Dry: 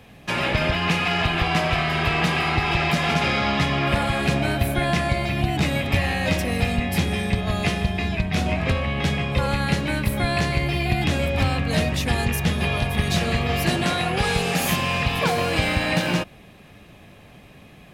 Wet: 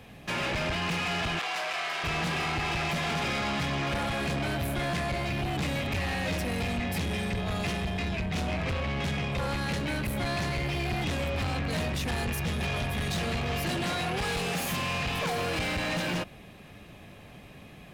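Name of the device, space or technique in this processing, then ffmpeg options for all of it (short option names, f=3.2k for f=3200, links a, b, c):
saturation between pre-emphasis and de-emphasis: -filter_complex "[0:a]highshelf=f=8.4k:g=8.5,asoftclip=type=tanh:threshold=-25.5dB,highshelf=f=8.4k:g=-8.5,asettb=1/sr,asplit=3[a][b][c];[a]atrim=end=1.394[d];[b]atrim=start=1.39:end=2.04,asetpts=PTS-STARTPTS,afade=t=in:d=0.004:c=qsin,afade=t=out:st=0.646:d=0.004:c=qsin,highpass=630[e];[c]atrim=start=2.036[f];[d][e]acrossfade=d=0.004:c1=hsin:c2=qsin[g];[g][f]acrossfade=d=0.004:c1=qsin:c2=hsin,volume=-1.5dB"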